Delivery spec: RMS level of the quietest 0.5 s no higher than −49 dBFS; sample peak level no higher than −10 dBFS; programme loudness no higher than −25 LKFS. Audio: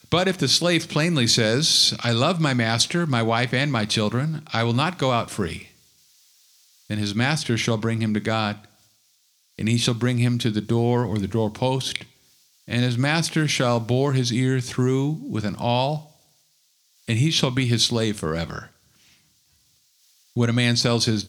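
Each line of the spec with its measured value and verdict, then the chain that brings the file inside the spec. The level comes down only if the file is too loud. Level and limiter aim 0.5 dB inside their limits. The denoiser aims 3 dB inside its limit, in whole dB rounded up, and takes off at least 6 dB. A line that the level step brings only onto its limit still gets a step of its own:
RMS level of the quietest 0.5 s −64 dBFS: in spec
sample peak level −4.0 dBFS: out of spec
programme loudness −22.0 LKFS: out of spec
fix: level −3.5 dB
brickwall limiter −10.5 dBFS

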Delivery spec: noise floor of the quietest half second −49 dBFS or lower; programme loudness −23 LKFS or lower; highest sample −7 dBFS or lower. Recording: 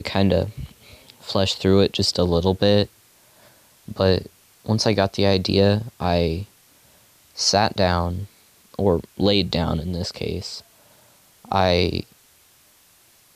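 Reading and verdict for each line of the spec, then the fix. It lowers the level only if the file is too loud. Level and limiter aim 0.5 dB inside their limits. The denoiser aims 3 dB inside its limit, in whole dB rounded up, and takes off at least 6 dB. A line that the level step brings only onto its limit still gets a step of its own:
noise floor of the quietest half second −56 dBFS: in spec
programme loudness −21.0 LKFS: out of spec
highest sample −4.0 dBFS: out of spec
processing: level −2.5 dB
brickwall limiter −7.5 dBFS

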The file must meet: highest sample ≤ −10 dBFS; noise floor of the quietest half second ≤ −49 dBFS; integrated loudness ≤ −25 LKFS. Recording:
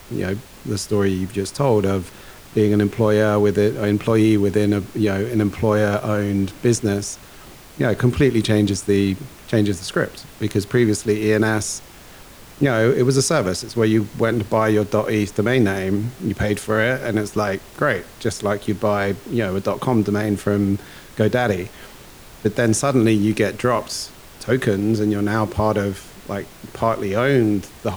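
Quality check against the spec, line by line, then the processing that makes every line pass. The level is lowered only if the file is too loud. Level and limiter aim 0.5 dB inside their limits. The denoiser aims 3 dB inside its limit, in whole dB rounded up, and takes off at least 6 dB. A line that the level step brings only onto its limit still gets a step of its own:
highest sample −5.5 dBFS: out of spec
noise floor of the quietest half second −42 dBFS: out of spec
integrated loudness −20.0 LKFS: out of spec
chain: broadband denoise 6 dB, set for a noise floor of −42 dBFS
level −5.5 dB

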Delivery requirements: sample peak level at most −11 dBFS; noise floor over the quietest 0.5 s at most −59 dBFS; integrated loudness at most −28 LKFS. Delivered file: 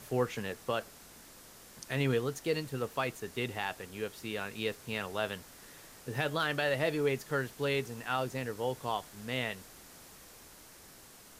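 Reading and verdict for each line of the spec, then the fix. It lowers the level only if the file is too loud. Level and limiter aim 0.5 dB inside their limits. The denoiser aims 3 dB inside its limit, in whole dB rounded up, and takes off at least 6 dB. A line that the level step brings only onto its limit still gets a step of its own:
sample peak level −18.0 dBFS: in spec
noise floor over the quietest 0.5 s −55 dBFS: out of spec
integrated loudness −34.5 LKFS: in spec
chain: broadband denoise 7 dB, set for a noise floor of −55 dBFS

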